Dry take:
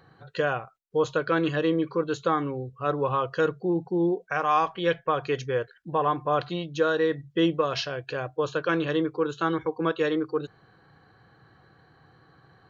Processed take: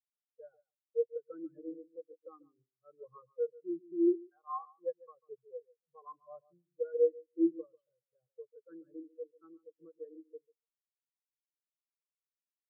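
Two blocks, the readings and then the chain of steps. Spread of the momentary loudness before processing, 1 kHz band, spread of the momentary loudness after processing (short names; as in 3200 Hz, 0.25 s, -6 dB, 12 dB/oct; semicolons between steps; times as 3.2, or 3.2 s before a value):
7 LU, -22.5 dB, 24 LU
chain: feedback echo 0.143 s, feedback 35%, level -5.5 dB; spectral expander 4:1; gain -8.5 dB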